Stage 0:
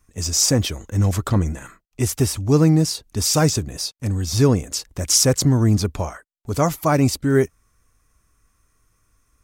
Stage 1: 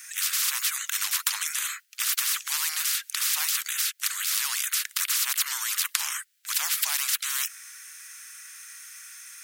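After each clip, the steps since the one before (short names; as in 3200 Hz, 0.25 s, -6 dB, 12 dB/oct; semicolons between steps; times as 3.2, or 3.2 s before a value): steep high-pass 1500 Hz 48 dB/oct; spectral compressor 10:1; gain +1.5 dB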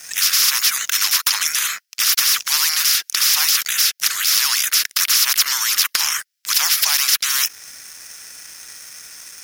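dynamic EQ 8200 Hz, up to -8 dB, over -46 dBFS, Q 4.6; sample leveller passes 3; bell 5300 Hz +8 dB 0.39 oct; gain -1.5 dB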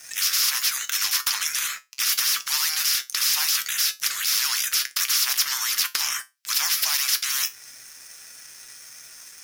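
resonator 130 Hz, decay 0.21 s, harmonics all, mix 70%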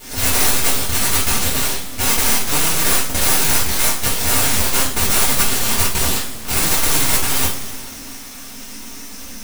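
band noise 94–150 Hz -44 dBFS; full-wave rectifier; two-slope reverb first 0.32 s, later 2.7 s, from -18 dB, DRR -7 dB; gain +3 dB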